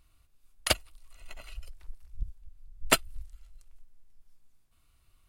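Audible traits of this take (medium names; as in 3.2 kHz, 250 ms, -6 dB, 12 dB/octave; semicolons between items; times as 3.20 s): noise floor -67 dBFS; spectral tilt -2.5 dB/octave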